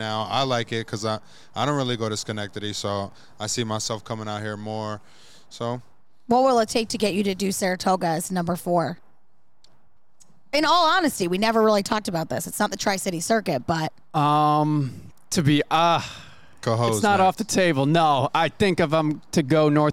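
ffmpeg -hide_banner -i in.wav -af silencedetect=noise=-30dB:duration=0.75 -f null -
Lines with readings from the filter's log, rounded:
silence_start: 8.93
silence_end: 10.53 | silence_duration: 1.60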